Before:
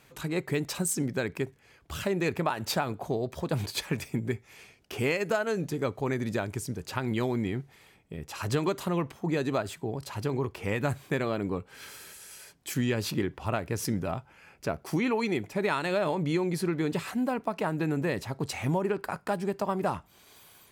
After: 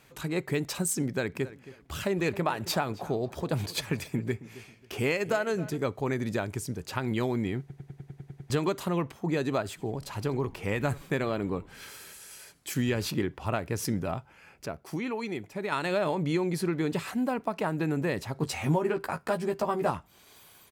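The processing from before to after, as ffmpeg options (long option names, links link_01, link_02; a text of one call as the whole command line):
ffmpeg -i in.wav -filter_complex "[0:a]asplit=3[link_01][link_02][link_03];[link_01]afade=type=out:start_time=1.34:duration=0.02[link_04];[link_02]asplit=2[link_05][link_06];[link_06]adelay=270,lowpass=frequency=3300:poles=1,volume=-16.5dB,asplit=2[link_07][link_08];[link_08]adelay=270,lowpass=frequency=3300:poles=1,volume=0.29,asplit=2[link_09][link_10];[link_10]adelay=270,lowpass=frequency=3300:poles=1,volume=0.29[link_11];[link_05][link_07][link_09][link_11]amix=inputs=4:normalize=0,afade=type=in:start_time=1.34:duration=0.02,afade=type=out:start_time=5.76:duration=0.02[link_12];[link_03]afade=type=in:start_time=5.76:duration=0.02[link_13];[link_04][link_12][link_13]amix=inputs=3:normalize=0,asplit=3[link_14][link_15][link_16];[link_14]afade=type=out:start_time=9.77:duration=0.02[link_17];[link_15]asplit=5[link_18][link_19][link_20][link_21][link_22];[link_19]adelay=83,afreqshift=-150,volume=-21.5dB[link_23];[link_20]adelay=166,afreqshift=-300,volume=-26.7dB[link_24];[link_21]adelay=249,afreqshift=-450,volume=-31.9dB[link_25];[link_22]adelay=332,afreqshift=-600,volume=-37.1dB[link_26];[link_18][link_23][link_24][link_25][link_26]amix=inputs=5:normalize=0,afade=type=in:start_time=9.77:duration=0.02,afade=type=out:start_time=13.05:duration=0.02[link_27];[link_16]afade=type=in:start_time=13.05:duration=0.02[link_28];[link_17][link_27][link_28]amix=inputs=3:normalize=0,asettb=1/sr,asplit=3[link_29][link_30][link_31];[link_29]atrim=end=18.344[link_32];[link_30]atrim=start=18.34:end=19.91,asetpts=PTS-STARTPTS,afade=type=in:duration=0.004:curve=qsin,afade=type=out:start_time=1.566:duration=0.004:curve=qsin,asplit=2[link_33][link_34];[link_34]adelay=13,volume=-4.5dB[link_35];[link_33][link_35]amix=inputs=2:normalize=0,atrim=end_sample=69237[link_36];[link_31]atrim=start=19.906[link_37];[link_32][link_36]acrossfade=duration=0.004:curve1=hsin:curve2=qsin[link_38];[link_38][link_37]acrossfade=duration=0.004:curve1=qsin:curve2=hsin,asplit=12[link_39][link_40][link_41][link_42][link_43][link_44][link_45][link_46][link_47][link_48][link_49][link_50];[link_39]atrim=end=7.702[link_51];[link_40]atrim=start=7.598:end=7.702[link_52];[link_41]atrim=start=7.598:end=7.702[link_53];[link_42]atrim=start=7.598:end=7.702[link_54];[link_43]atrim=start=7.598:end=7.702[link_55];[link_44]atrim=start=7.598:end=7.702[link_56];[link_45]atrim=start=7.598:end=7.702[link_57];[link_46]atrim=start=7.598:end=7.702[link_58];[link_47]atrim=start=7.598:end=7.702[link_59];[link_48]atrim=start=8.498:end=14.662[link_60];[link_49]atrim=start=14.658:end=15.722,asetpts=PTS-STARTPTS,volume=-5.5dB[link_61];[link_50]atrim=start=15.718[link_62];[link_51][link_52]acrossfade=duration=0.004:curve1=hsin:curve2=hsin[link_63];[link_63][link_53]acrossfade=duration=0.004:curve1=hsin:curve2=hsin[link_64];[link_64][link_54]acrossfade=duration=0.004:curve1=hsin:curve2=hsin[link_65];[link_65][link_55]acrossfade=duration=0.004:curve1=hsin:curve2=hsin[link_66];[link_66][link_56]acrossfade=duration=0.004:curve1=hsin:curve2=hsin[link_67];[link_67][link_57]acrossfade=duration=0.004:curve1=hsin:curve2=hsin[link_68];[link_68][link_58]acrossfade=duration=0.004:curve1=hsin:curve2=hsin[link_69];[link_69][link_59]acrossfade=duration=0.004:curve1=hsin:curve2=hsin[link_70];[link_70][link_60]acrossfade=duration=0.004:curve1=hsin:curve2=hsin[link_71];[link_71][link_61]acrossfade=duration=0.004:curve1=hsin:curve2=hsin[link_72];[link_72][link_62]acrossfade=duration=0.004:curve1=hsin:curve2=hsin" out.wav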